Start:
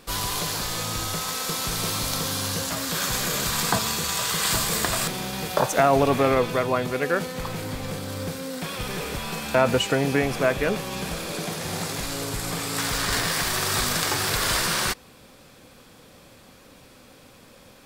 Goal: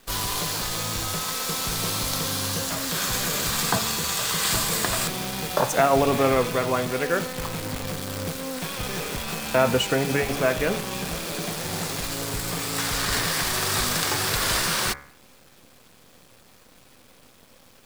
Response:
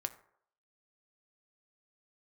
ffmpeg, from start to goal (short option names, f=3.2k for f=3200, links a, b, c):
-af "acrusher=bits=6:dc=4:mix=0:aa=0.000001,bandreject=f=70.19:t=h:w=4,bandreject=f=140.38:t=h:w=4,bandreject=f=210.57:t=h:w=4,bandreject=f=280.76:t=h:w=4,bandreject=f=350.95:t=h:w=4,bandreject=f=421.14:t=h:w=4,bandreject=f=491.33:t=h:w=4,bandreject=f=561.52:t=h:w=4,bandreject=f=631.71:t=h:w=4,bandreject=f=701.9:t=h:w=4,bandreject=f=772.09:t=h:w=4,bandreject=f=842.28:t=h:w=4,bandreject=f=912.47:t=h:w=4,bandreject=f=982.66:t=h:w=4,bandreject=f=1.05285k:t=h:w=4,bandreject=f=1.12304k:t=h:w=4,bandreject=f=1.19323k:t=h:w=4,bandreject=f=1.26342k:t=h:w=4,bandreject=f=1.33361k:t=h:w=4,bandreject=f=1.4038k:t=h:w=4,bandreject=f=1.47399k:t=h:w=4,bandreject=f=1.54418k:t=h:w=4,bandreject=f=1.61437k:t=h:w=4,bandreject=f=1.68456k:t=h:w=4,bandreject=f=1.75475k:t=h:w=4,bandreject=f=1.82494k:t=h:w=4,bandreject=f=1.89513k:t=h:w=4,bandreject=f=1.96532k:t=h:w=4,bandreject=f=2.03551k:t=h:w=4,bandreject=f=2.1057k:t=h:w=4,bandreject=f=2.17589k:t=h:w=4,bandreject=f=2.24608k:t=h:w=4,bandreject=f=2.31627k:t=h:w=4,bandreject=f=2.38646k:t=h:w=4"